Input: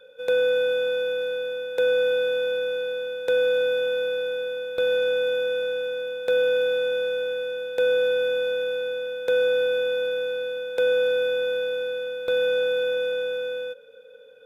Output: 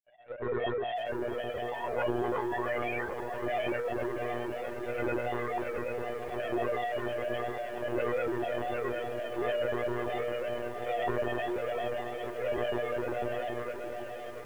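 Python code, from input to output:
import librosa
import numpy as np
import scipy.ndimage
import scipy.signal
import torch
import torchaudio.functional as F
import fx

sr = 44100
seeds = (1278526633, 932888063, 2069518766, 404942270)

y = fx.freq_compress(x, sr, knee_hz=1100.0, ratio=1.5)
y = fx.auto_swell(y, sr, attack_ms=276.0)
y = fx.spec_paint(y, sr, seeds[0], shape='rise', start_s=1.57, length_s=1.56, low_hz=540.0, high_hz=2200.0, level_db=-30.0)
y = fx.granulator(y, sr, seeds[1], grain_ms=100.0, per_s=20.0, spray_ms=100.0, spread_st=7)
y = fx.echo_feedback(y, sr, ms=770, feedback_pct=23, wet_db=-8.5)
y = fx.lpc_monotone(y, sr, seeds[2], pitch_hz=120.0, order=16)
y = fx.echo_crushed(y, sr, ms=670, feedback_pct=80, bits=7, wet_db=-12.5)
y = F.gain(torch.from_numpy(y), -7.5).numpy()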